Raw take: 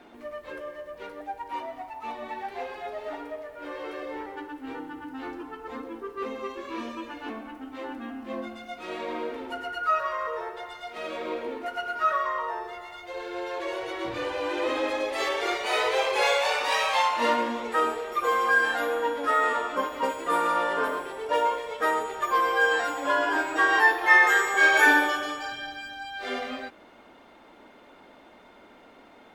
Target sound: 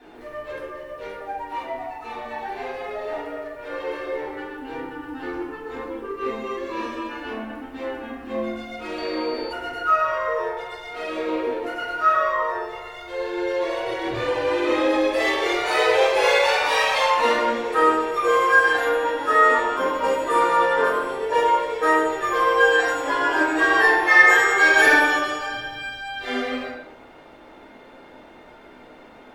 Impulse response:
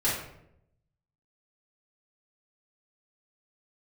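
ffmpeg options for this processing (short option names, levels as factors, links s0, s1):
-filter_complex "[0:a]asoftclip=type=tanh:threshold=0.447[s0];[1:a]atrim=start_sample=2205[s1];[s0][s1]afir=irnorm=-1:irlink=0,asettb=1/sr,asplit=3[s2][s3][s4];[s2]atrim=end=8.984[s5];[s3]atrim=start=8.98:end=9.53,asetpts=PTS-STARTPTS,afade=t=in:d=0.004:c=qsin,afade=t=out:st=0.546:d=0.004:c=qsin,aeval=exprs='val(0)+0.02*sin(2*PI*4500*n/s)':c=same[s6];[s4]atrim=start=9.526[s7];[s5][s6]acrossfade=d=0.004:c1=hsin:c2=qsin[s8];[s8][s7]acrossfade=d=0.004:c1=qsin:c2=hsin,volume=0.596"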